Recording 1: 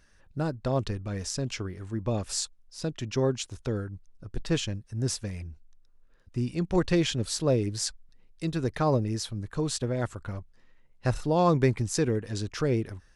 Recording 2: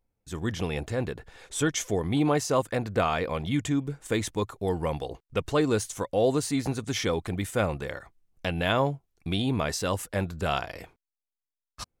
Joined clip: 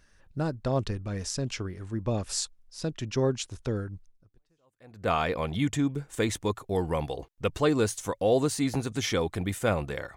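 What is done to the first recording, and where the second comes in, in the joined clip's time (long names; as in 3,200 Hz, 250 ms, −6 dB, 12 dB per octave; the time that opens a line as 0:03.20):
recording 1
0:04.58: continue with recording 2 from 0:02.50, crossfade 1.06 s exponential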